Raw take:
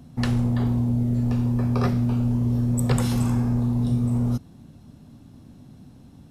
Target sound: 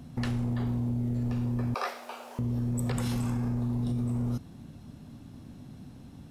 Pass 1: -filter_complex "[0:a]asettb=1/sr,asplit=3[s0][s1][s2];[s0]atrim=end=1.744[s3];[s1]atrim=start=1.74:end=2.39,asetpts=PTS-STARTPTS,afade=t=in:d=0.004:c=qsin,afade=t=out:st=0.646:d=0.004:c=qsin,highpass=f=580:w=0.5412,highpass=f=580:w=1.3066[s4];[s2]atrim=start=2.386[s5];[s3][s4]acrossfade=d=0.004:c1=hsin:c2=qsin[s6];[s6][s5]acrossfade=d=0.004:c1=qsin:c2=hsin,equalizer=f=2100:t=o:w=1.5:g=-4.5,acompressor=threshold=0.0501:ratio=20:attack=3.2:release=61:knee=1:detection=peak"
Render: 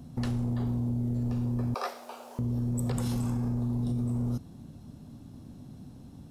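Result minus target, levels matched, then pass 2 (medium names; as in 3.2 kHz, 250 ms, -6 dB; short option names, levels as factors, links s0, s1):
2 kHz band -5.5 dB
-filter_complex "[0:a]asettb=1/sr,asplit=3[s0][s1][s2];[s0]atrim=end=1.744[s3];[s1]atrim=start=1.74:end=2.39,asetpts=PTS-STARTPTS,afade=t=in:d=0.004:c=qsin,afade=t=out:st=0.646:d=0.004:c=qsin,highpass=f=580:w=0.5412,highpass=f=580:w=1.3066[s4];[s2]atrim=start=2.386[s5];[s3][s4]acrossfade=d=0.004:c1=hsin:c2=qsin[s6];[s6][s5]acrossfade=d=0.004:c1=qsin:c2=hsin,equalizer=f=2100:t=o:w=1.5:g=3,acompressor=threshold=0.0501:ratio=20:attack=3.2:release=61:knee=1:detection=peak"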